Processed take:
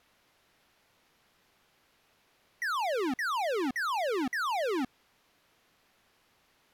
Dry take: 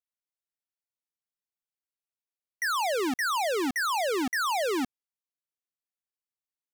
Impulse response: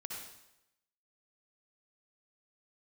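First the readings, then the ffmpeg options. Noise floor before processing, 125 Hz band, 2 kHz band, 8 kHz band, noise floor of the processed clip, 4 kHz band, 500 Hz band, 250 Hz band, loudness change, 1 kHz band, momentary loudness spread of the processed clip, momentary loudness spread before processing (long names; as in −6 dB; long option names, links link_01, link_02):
below −85 dBFS, −2.5 dB, −3.5 dB, −11.0 dB, −70 dBFS, −6.0 dB, −2.5 dB, −2.5 dB, −3.5 dB, −3.0 dB, 4 LU, 4 LU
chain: -af "aeval=exprs='val(0)+0.5*0.00447*sgn(val(0))':channel_layout=same,adynamicsmooth=sensitivity=1:basefreq=3900,aexciter=amount=4.6:drive=4.2:freq=11000,volume=-3dB"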